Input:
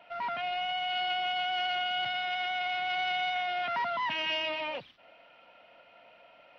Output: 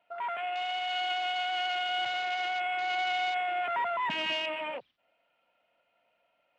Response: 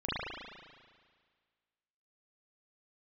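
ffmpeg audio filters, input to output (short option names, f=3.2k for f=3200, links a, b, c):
-filter_complex "[0:a]afwtdn=0.0126,asettb=1/sr,asplit=3[a][b][c];[a]atrim=end=1.894[d];[b]atrim=start=1.89:end=4.33,asetpts=PTS-STARTPTS,afade=t=in:d=0.004:c=qsin,afade=t=out:st=2.436:d=0.004:c=qsin,lowshelf=f=330:g=9.5[e];[c]atrim=start=4.326[f];[d][e]acrossfade=d=0.004:c1=hsin:c2=qsin[g];[g][f]acrossfade=d=0.004:c1=qsin:c2=hsin"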